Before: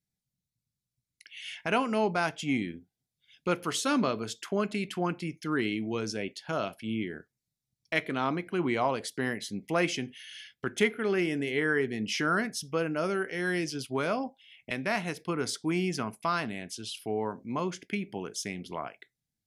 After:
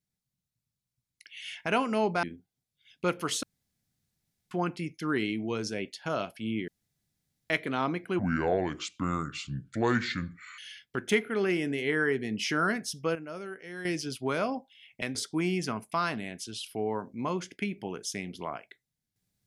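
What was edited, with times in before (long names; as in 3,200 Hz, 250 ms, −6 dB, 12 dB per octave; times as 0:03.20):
0:02.23–0:02.66: remove
0:03.86–0:04.94: fill with room tone
0:07.11–0:07.93: fill with room tone
0:08.62–0:10.27: play speed 69%
0:12.84–0:13.54: clip gain −10 dB
0:14.84–0:15.46: remove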